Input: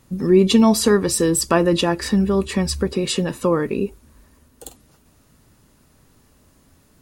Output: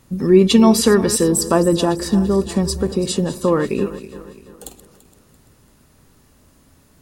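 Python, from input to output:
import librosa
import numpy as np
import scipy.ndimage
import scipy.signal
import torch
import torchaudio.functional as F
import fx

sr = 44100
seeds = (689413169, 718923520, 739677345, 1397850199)

y = fx.reverse_delay_fb(x, sr, ms=169, feedback_pct=64, wet_db=-14.0)
y = fx.peak_eq(y, sr, hz=2300.0, db=-11.5, octaves=1.1, at=(1.23, 3.48))
y = y * 10.0 ** (2.0 / 20.0)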